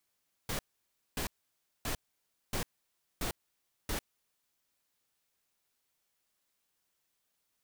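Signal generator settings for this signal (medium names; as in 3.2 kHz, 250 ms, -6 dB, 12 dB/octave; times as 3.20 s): noise bursts pink, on 0.10 s, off 0.58 s, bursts 6, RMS -34.5 dBFS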